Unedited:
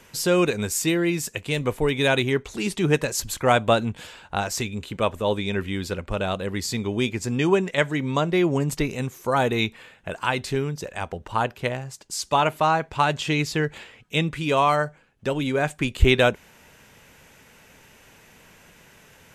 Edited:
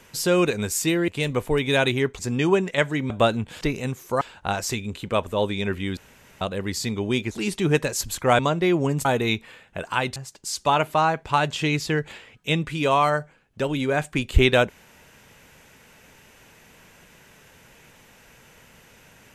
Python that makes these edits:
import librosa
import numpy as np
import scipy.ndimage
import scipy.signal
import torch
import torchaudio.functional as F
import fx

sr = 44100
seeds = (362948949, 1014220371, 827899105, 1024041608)

y = fx.edit(x, sr, fx.cut(start_s=1.08, length_s=0.31),
    fx.swap(start_s=2.5, length_s=1.08, other_s=7.19, other_length_s=0.91),
    fx.room_tone_fill(start_s=5.85, length_s=0.44),
    fx.move(start_s=8.76, length_s=0.6, to_s=4.09),
    fx.cut(start_s=10.47, length_s=1.35), tone=tone)